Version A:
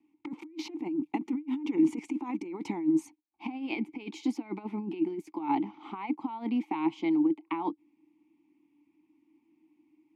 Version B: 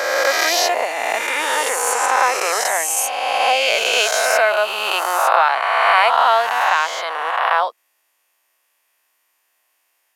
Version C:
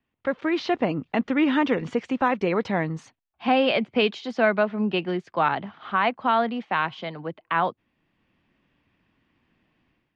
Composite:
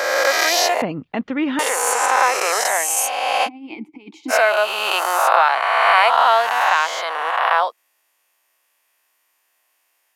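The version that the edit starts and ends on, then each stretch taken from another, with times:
B
0.82–1.59 s: from C
3.46–4.31 s: from A, crossfade 0.06 s

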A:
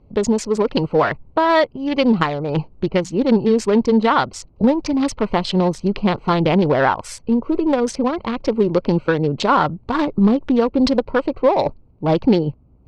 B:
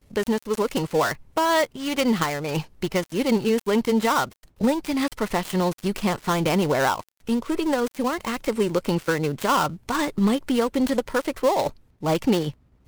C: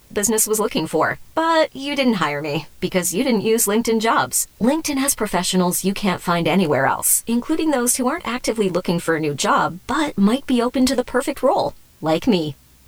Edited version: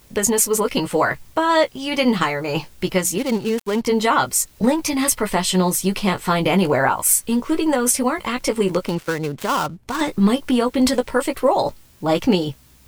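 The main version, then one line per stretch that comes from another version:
C
3.18–3.86 s: from B
8.86–10.01 s: from B
not used: A

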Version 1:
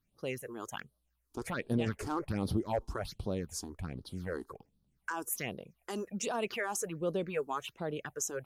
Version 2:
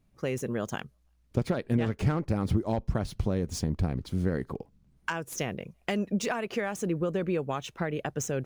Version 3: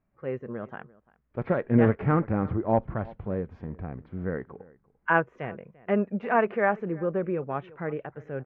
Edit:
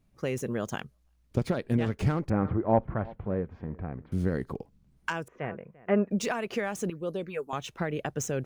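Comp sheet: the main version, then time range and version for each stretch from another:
2
2.30–4.12 s: from 3
5.28–6.11 s: from 3
6.90–7.53 s: from 1

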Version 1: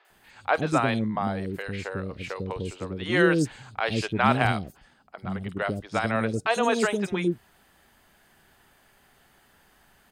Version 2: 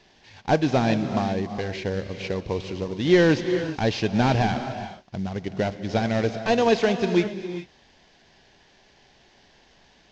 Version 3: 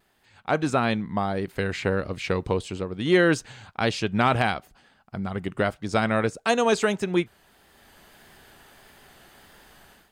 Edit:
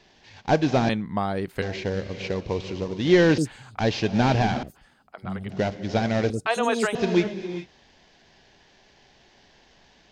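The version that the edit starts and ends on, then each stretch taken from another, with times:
2
0.89–1.62 s: from 3
3.38–3.79 s: from 1
4.63–5.50 s: from 1
6.30–6.95 s: from 1

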